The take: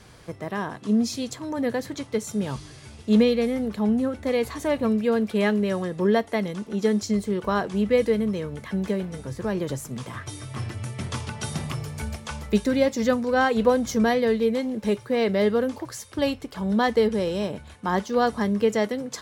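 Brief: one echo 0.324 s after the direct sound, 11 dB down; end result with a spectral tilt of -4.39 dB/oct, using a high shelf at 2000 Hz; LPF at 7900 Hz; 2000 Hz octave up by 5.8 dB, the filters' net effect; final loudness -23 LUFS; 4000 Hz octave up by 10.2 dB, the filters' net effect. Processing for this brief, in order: LPF 7900 Hz; high shelf 2000 Hz +3.5 dB; bell 2000 Hz +3.5 dB; bell 4000 Hz +8.5 dB; echo 0.324 s -11 dB

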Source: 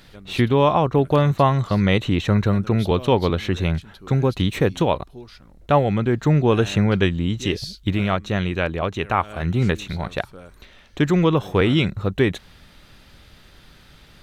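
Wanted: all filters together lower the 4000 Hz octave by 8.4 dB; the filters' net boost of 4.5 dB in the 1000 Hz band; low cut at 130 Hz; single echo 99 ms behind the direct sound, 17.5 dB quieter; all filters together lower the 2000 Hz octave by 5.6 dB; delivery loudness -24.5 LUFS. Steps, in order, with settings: HPF 130 Hz; bell 1000 Hz +7.5 dB; bell 2000 Hz -7.5 dB; bell 4000 Hz -8.5 dB; echo 99 ms -17.5 dB; gain -4 dB

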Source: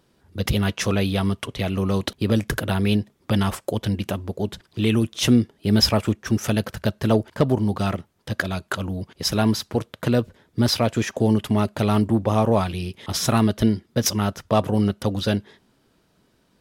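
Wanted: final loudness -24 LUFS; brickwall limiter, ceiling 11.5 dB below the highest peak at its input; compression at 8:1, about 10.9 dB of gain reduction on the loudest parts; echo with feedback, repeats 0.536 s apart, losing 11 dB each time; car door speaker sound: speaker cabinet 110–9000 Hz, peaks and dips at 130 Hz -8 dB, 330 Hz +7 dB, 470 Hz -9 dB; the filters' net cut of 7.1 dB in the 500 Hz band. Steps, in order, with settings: bell 500 Hz -8.5 dB; compressor 8:1, threshold -25 dBFS; limiter -23.5 dBFS; speaker cabinet 110–9000 Hz, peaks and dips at 130 Hz -8 dB, 330 Hz +7 dB, 470 Hz -9 dB; feedback echo 0.536 s, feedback 28%, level -11 dB; gain +11.5 dB

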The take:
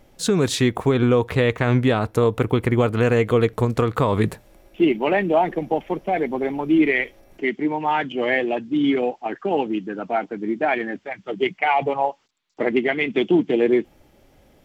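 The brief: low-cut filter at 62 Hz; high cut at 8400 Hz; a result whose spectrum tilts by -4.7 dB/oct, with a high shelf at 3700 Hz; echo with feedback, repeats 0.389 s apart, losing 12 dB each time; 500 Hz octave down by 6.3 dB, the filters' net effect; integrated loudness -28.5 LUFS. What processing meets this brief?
HPF 62 Hz; LPF 8400 Hz; bell 500 Hz -8.5 dB; high shelf 3700 Hz +5 dB; feedback echo 0.389 s, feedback 25%, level -12 dB; gain -5 dB

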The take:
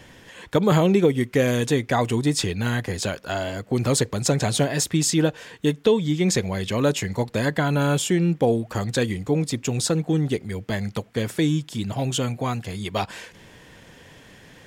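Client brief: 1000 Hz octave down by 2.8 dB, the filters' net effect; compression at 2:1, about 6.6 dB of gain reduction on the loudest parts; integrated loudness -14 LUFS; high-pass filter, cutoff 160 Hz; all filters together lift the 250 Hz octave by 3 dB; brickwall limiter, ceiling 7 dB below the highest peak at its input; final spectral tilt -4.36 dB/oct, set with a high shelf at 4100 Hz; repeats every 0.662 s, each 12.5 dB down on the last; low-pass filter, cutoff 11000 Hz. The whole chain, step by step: HPF 160 Hz; LPF 11000 Hz; bell 250 Hz +5.5 dB; bell 1000 Hz -5 dB; high shelf 4100 Hz +7.5 dB; compressor 2:1, threshold -24 dBFS; limiter -16 dBFS; feedback echo 0.662 s, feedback 24%, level -12.5 dB; gain +13 dB

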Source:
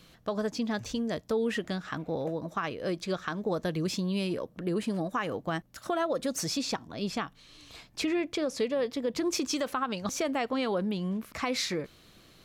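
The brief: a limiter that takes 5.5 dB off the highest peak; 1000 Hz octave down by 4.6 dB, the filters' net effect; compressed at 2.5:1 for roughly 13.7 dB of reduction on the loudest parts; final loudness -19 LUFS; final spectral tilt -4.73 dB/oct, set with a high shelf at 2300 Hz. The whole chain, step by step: bell 1000 Hz -5.5 dB; high shelf 2300 Hz -3.5 dB; compressor 2.5:1, threshold -48 dBFS; gain +27.5 dB; limiter -9 dBFS

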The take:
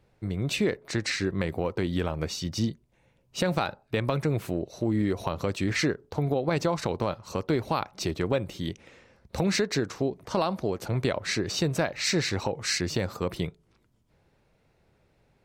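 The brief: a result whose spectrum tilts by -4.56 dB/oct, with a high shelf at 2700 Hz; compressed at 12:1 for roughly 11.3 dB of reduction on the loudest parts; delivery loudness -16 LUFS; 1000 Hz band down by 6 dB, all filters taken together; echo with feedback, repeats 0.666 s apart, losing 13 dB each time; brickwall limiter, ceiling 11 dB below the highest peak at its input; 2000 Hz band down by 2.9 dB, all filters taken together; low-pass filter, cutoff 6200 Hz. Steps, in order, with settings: LPF 6200 Hz; bell 1000 Hz -8 dB; bell 2000 Hz -3 dB; high shelf 2700 Hz +4 dB; compressor 12:1, threshold -33 dBFS; limiter -31 dBFS; feedback echo 0.666 s, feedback 22%, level -13 dB; gain +25.5 dB

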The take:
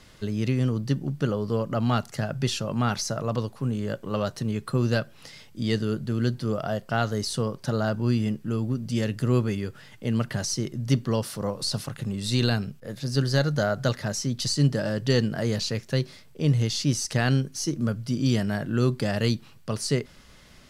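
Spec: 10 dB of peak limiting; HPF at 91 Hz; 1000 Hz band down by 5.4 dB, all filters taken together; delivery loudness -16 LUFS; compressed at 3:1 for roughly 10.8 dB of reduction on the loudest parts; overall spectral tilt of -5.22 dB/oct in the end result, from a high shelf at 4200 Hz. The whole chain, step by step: HPF 91 Hz; bell 1000 Hz -8 dB; high shelf 4200 Hz -4 dB; compressor 3:1, threshold -32 dBFS; gain +23 dB; limiter -6.5 dBFS

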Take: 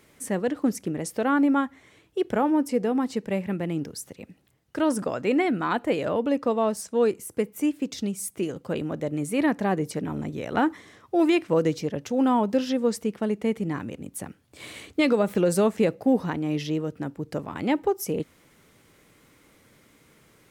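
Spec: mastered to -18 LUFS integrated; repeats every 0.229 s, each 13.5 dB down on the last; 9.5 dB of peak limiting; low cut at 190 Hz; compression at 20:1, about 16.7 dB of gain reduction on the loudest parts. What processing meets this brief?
HPF 190 Hz; compressor 20:1, threshold -34 dBFS; limiter -30.5 dBFS; feedback echo 0.229 s, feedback 21%, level -13.5 dB; gain +23 dB

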